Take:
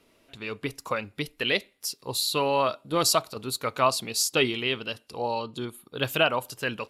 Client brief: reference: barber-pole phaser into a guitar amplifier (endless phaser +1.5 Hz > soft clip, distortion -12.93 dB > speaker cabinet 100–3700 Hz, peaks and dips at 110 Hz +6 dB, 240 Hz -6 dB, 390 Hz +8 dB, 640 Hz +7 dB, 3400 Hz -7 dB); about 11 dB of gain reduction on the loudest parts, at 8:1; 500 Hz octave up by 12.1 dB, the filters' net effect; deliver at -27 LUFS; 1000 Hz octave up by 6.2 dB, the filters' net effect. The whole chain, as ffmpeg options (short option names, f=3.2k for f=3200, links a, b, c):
-filter_complex "[0:a]equalizer=f=500:t=o:g=7,equalizer=f=1k:t=o:g=4,acompressor=threshold=-24dB:ratio=8,asplit=2[a][b];[b]afreqshift=1.5[c];[a][c]amix=inputs=2:normalize=1,asoftclip=threshold=-26.5dB,highpass=100,equalizer=f=110:t=q:w=4:g=6,equalizer=f=240:t=q:w=4:g=-6,equalizer=f=390:t=q:w=4:g=8,equalizer=f=640:t=q:w=4:g=7,equalizer=f=3.4k:t=q:w=4:g=-7,lowpass=f=3.7k:w=0.5412,lowpass=f=3.7k:w=1.3066,volume=6.5dB"